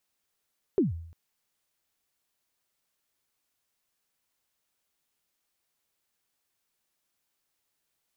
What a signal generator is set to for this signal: kick drum length 0.35 s, from 430 Hz, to 83 Hz, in 0.146 s, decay 0.67 s, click off, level -17.5 dB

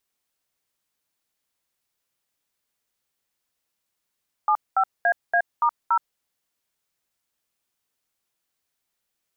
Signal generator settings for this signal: DTMF "75AA*0", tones 72 ms, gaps 0.213 s, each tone -19 dBFS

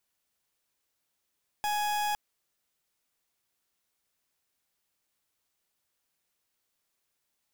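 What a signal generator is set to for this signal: pulse 835 Hz, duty 40% -29.5 dBFS 0.51 s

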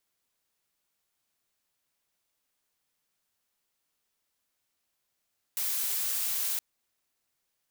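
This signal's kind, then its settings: noise blue, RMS -30.5 dBFS 1.02 s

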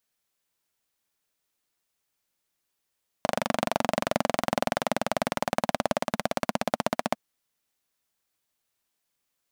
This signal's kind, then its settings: single-cylinder engine model, changing speed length 3.90 s, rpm 2900, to 1800, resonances 230/620 Hz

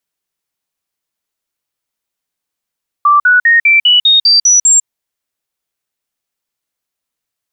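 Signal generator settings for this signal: stepped sine 1170 Hz up, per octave 3, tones 9, 0.15 s, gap 0.05 s -4.5 dBFS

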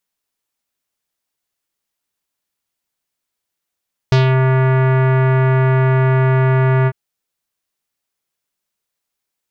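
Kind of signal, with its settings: synth note square C3 24 dB/oct, low-pass 2000 Hz, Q 1.2, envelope 1.5 oct, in 0.24 s, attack 1.4 ms, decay 0.13 s, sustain -3 dB, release 0.05 s, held 2.75 s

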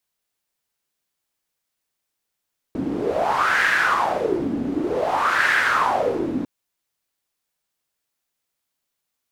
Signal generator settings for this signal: wind-like swept noise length 3.70 s, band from 260 Hz, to 1700 Hz, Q 5.4, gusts 2, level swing 6.5 dB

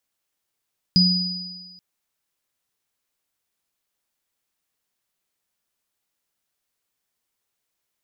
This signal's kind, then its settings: sine partials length 0.83 s, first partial 182 Hz, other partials 4940 Hz, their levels -0.5 dB, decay 1.20 s, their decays 1.58 s, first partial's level -13.5 dB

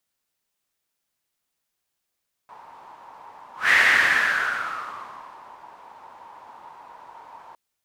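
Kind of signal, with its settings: whoosh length 5.06 s, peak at 1.22, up 0.18 s, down 1.96 s, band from 930 Hz, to 1900 Hz, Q 7.1, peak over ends 29 dB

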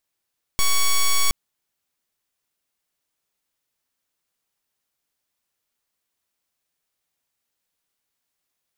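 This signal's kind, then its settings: pulse 1120 Hz, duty 6% -16.5 dBFS 0.72 s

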